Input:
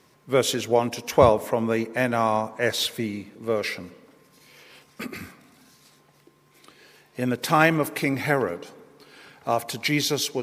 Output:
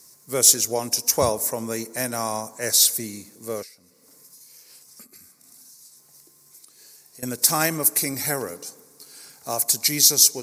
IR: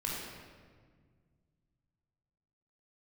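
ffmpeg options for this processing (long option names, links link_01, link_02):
-filter_complex "[0:a]aexciter=amount=11.9:drive=7.1:freq=4800,asettb=1/sr,asplit=3[link_01][link_02][link_03];[link_01]atrim=end=3.624[link_04];[link_02]atrim=start=3.62:end=7.23,asetpts=PTS-STARTPTS,afade=type=in:duration=0.004:curve=qsin,afade=type=out:start_time=3.606:duration=0.004:curve=qsin,acompressor=threshold=-38dB:ratio=10[link_05];[link_03]atrim=start=7.226[link_06];[link_04][link_05]acrossfade=duration=0.004:curve1=hsin:curve2=qsin[link_07];[link_07][link_06]acrossfade=duration=0.004:curve1=qsin:curve2=hsin,highshelf=frequency=10000:gain=-3.5,volume=-5.5dB"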